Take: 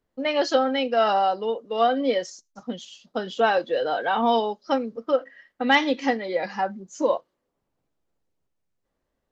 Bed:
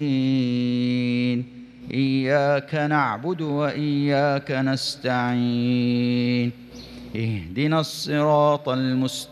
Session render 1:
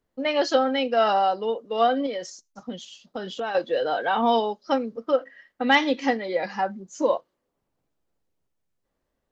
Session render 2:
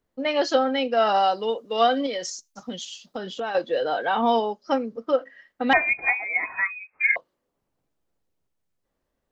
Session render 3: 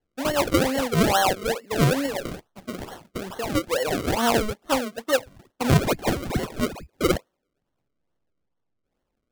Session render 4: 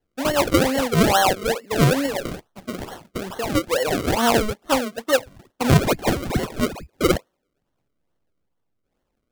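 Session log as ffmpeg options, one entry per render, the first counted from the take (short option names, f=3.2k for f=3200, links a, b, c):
-filter_complex "[0:a]asettb=1/sr,asplit=3[a][b][c];[a]atrim=end=2.064[d];[b]atrim=start=2.06:end=3.55,asetpts=PTS-STARTPTS,afade=t=in:d=0.004:c=qsin,afade=t=out:st=1.486:d=0.004:c=qsin,acompressor=threshold=-27dB:ratio=4:attack=3.2:release=140:knee=1:detection=peak[e];[c]atrim=start=3.546[f];[d][e]acrossfade=d=0.004:c1=hsin:c2=qsin[g];[g][f]acrossfade=d=0.004:c1=qsin:c2=hsin"
-filter_complex "[0:a]asettb=1/sr,asplit=3[a][b][c];[a]atrim=end=1.144[d];[b]atrim=start=1.14:end=3.17,asetpts=PTS-STARTPTS,afade=t=in:d=0.004:c=qsin,afade=t=out:st=2.026:d=0.004:c=qsin,highshelf=f=2.3k:g=9[e];[c]atrim=start=3.166[f];[d][e]acrossfade=d=0.004:c1=hsin:c2=qsin[g];[g][f]acrossfade=d=0.004:c1=qsin:c2=hsin,asettb=1/sr,asplit=3[h][i][j];[h]atrim=end=4.324[k];[i]atrim=start=4.32:end=4.91,asetpts=PTS-STARTPTS,afade=t=in:d=0.004:c=qsin,afade=t=out:st=0.586:d=0.004:c=qsin,equalizer=f=3.8k:t=o:w=0.34:g=-7[l];[j]atrim=start=4.906[m];[k][l]acrossfade=d=0.004:c1=hsin:c2=qsin[n];[n][m]acrossfade=d=0.004:c1=qsin:c2=hsin,asettb=1/sr,asplit=3[o][p][q];[o]atrim=end=5.734[r];[p]atrim=start=5.73:end=7.16,asetpts=PTS-STARTPTS,afade=t=in:d=0.004:c=qsin,afade=t=out:st=1.426:d=0.004:c=qsin,lowpass=f=2.3k:t=q:w=0.5098,lowpass=f=2.3k:t=q:w=0.6013,lowpass=f=2.3k:t=q:w=0.9,lowpass=f=2.3k:t=q:w=2.563,afreqshift=-2700[s];[q]atrim=start=7.156[t];[r][s]acrossfade=d=0.004:c1=hsin:c2=qsin[u];[u][t]acrossfade=d=0.004:c1=qsin:c2=hsin"
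-af "acrusher=samples=35:mix=1:aa=0.000001:lfo=1:lforange=35:lforate=2.3"
-af "volume=3dB"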